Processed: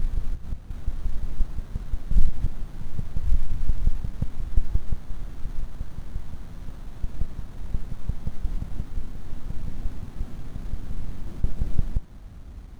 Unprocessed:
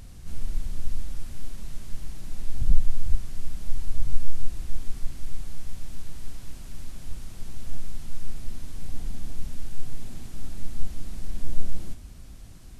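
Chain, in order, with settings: slices in reverse order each 0.176 s, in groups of 4; running maximum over 17 samples; gain +3 dB

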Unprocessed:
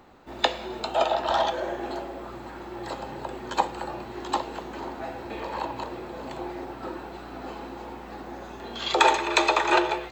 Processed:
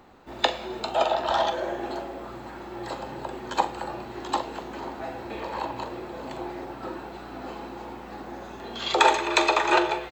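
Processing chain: doubler 43 ms -13.5 dB

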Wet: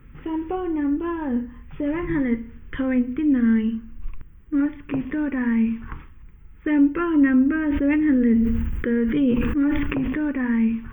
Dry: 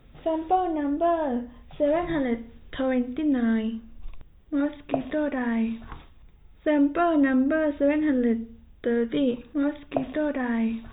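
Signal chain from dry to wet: dynamic EQ 1400 Hz, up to -6 dB, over -44 dBFS, Q 1.3; fixed phaser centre 1600 Hz, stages 4; 7.56–10.3 sustainer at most 21 dB/s; gain +7 dB

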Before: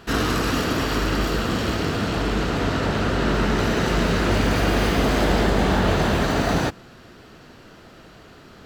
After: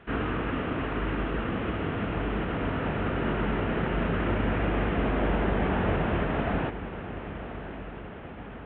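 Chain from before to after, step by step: CVSD 16 kbps; diffused feedback echo 1.096 s, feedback 61%, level -12 dB; gain -6 dB

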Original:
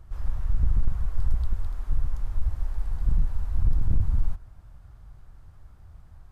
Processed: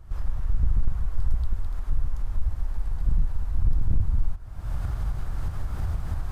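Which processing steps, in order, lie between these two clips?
recorder AGC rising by 50 dB/s

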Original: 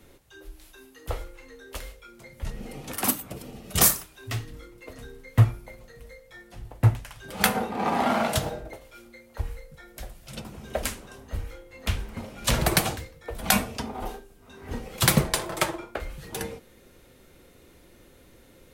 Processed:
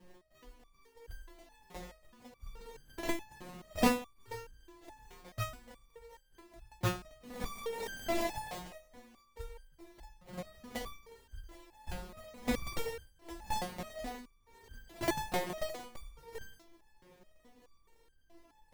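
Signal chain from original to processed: sample-rate reducer 1400 Hz, jitter 20%; stepped resonator 4.7 Hz 180–1600 Hz; gain +6.5 dB

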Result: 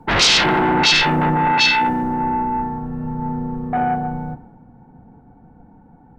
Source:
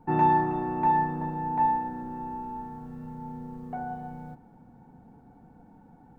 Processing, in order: sine folder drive 17 dB, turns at -11 dBFS; three-band expander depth 70%; gain -3 dB

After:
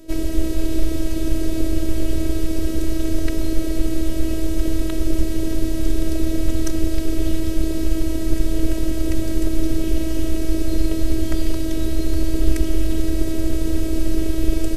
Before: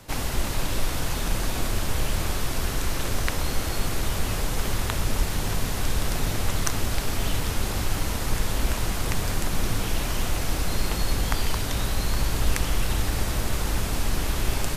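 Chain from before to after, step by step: robotiser 321 Hz; resonant low shelf 650 Hz +12 dB, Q 3; gain -2.5 dB

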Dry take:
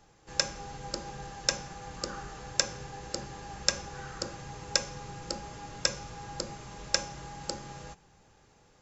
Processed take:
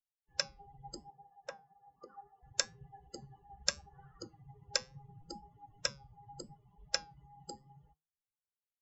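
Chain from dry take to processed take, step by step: per-bin expansion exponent 3; 1.1–2.43 band-pass 660 Hz, Q 1.3; flange 0.73 Hz, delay 5.7 ms, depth 2.2 ms, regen +85%; gain +2 dB

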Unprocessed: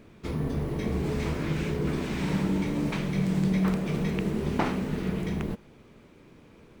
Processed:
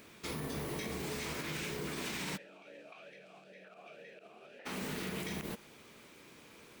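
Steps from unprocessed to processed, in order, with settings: tilt +3.5 dB/oct; compressor, threshold -34 dBFS, peak gain reduction 10.5 dB; limiter -29.5 dBFS, peak gain reduction 11 dB; 2.36–4.65 vowel sweep a-e 3.1 Hz -> 1.6 Hz

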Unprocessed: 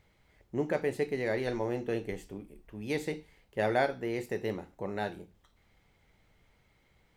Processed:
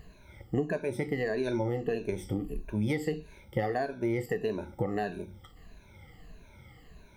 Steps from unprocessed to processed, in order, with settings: moving spectral ripple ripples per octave 1.5, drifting -1.6 Hz, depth 20 dB; compressor 6:1, threshold -37 dBFS, peak gain reduction 17.5 dB; low shelf 410 Hz +7 dB; gain +5.5 dB

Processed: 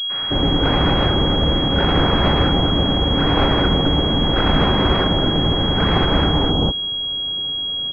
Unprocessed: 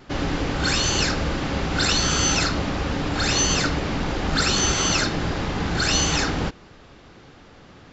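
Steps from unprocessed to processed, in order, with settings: tracing distortion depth 0.48 ms; bands offset in time highs, lows 0.21 s, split 1200 Hz; pulse-width modulation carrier 3300 Hz; gain +7 dB

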